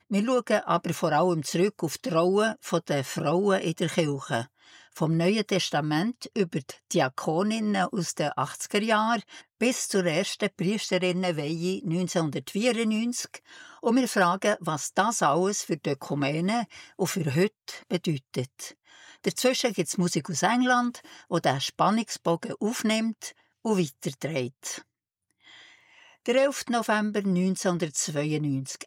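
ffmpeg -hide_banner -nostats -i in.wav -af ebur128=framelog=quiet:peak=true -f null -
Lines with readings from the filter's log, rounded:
Integrated loudness:
  I:         -26.8 LUFS
  Threshold: -37.2 LUFS
Loudness range:
  LRA:         3.8 LU
  Threshold: -47.4 LUFS
  LRA low:   -29.6 LUFS
  LRA high:  -25.8 LUFS
True peak:
  Peak:       -9.9 dBFS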